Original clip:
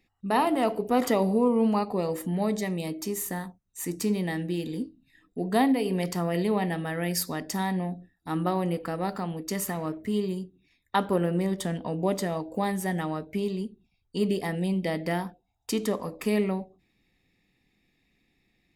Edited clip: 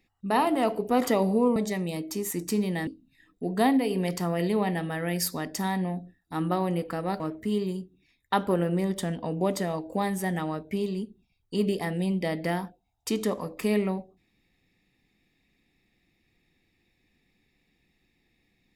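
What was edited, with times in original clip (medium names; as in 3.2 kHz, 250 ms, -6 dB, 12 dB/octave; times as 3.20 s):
1.56–2.47 s: delete
3.22–3.83 s: delete
4.39–4.82 s: delete
9.15–9.82 s: delete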